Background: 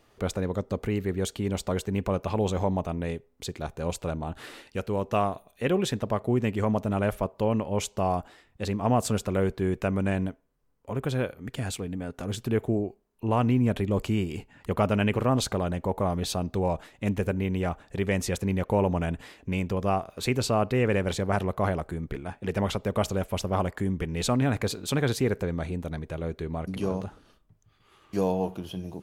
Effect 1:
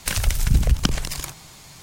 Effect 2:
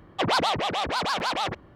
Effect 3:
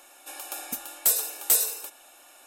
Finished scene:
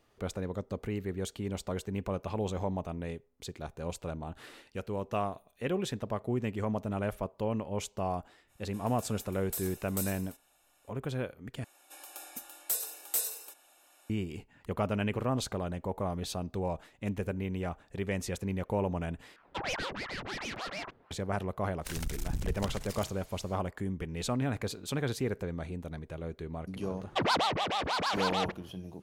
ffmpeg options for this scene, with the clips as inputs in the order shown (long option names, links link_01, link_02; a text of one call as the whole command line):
ffmpeg -i bed.wav -i cue0.wav -i cue1.wav -i cue2.wav -filter_complex "[3:a]asplit=2[link_01][link_02];[2:a]asplit=2[link_03][link_04];[0:a]volume=-7dB[link_05];[link_03]aeval=exprs='val(0)*sin(2*PI*850*n/s+850*0.8/2.8*sin(2*PI*2.8*n/s))':channel_layout=same[link_06];[1:a]aeval=exprs='(tanh(7.08*val(0)+0.7)-tanh(0.7))/7.08':channel_layout=same[link_07];[link_05]asplit=3[link_08][link_09][link_10];[link_08]atrim=end=11.644[link_11];[link_02]atrim=end=2.46,asetpts=PTS-STARTPTS,volume=-10dB[link_12];[link_09]atrim=start=14.096:end=19.364[link_13];[link_06]atrim=end=1.75,asetpts=PTS-STARTPTS,volume=-9dB[link_14];[link_10]atrim=start=21.106[link_15];[link_01]atrim=end=2.46,asetpts=PTS-STARTPTS,volume=-16dB,afade=type=in:duration=0.05,afade=type=out:start_time=2.41:duration=0.05,adelay=8470[link_16];[link_07]atrim=end=1.82,asetpts=PTS-STARTPTS,volume=-11dB,afade=type=in:duration=0.1,afade=type=out:start_time=1.72:duration=0.1,adelay=21790[link_17];[link_04]atrim=end=1.75,asetpts=PTS-STARTPTS,volume=-4.5dB,afade=type=in:duration=0.004:curve=hsin,afade=type=out:start_time=1.746:duration=0.004:curve=hsin,adelay=26970[link_18];[link_11][link_12]acrossfade=duration=0.004:curve1=hsin:curve2=hsin[link_19];[link_19][link_13]acrossfade=duration=0.004:curve1=hsin:curve2=hsin[link_20];[link_20][link_14]acrossfade=duration=0.004:curve1=hsin:curve2=hsin[link_21];[link_21][link_15]acrossfade=duration=0.004:curve1=hsin:curve2=hsin[link_22];[link_22][link_16][link_17][link_18]amix=inputs=4:normalize=0" out.wav